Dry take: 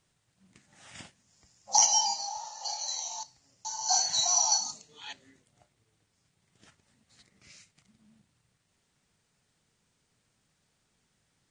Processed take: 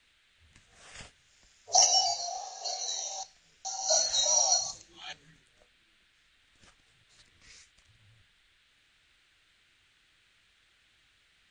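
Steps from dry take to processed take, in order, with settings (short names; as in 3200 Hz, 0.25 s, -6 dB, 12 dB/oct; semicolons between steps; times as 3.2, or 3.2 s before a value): band noise 1500–4100 Hz -68 dBFS; frequency shift -110 Hz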